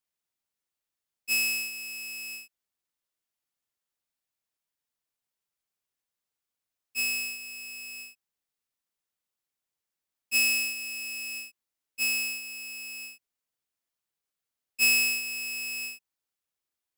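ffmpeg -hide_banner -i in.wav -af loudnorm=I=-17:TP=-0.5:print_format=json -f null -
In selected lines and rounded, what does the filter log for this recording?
"input_i" : "-27.2",
"input_tp" : "-13.3",
"input_lra" : "7.2",
"input_thresh" : "-38.2",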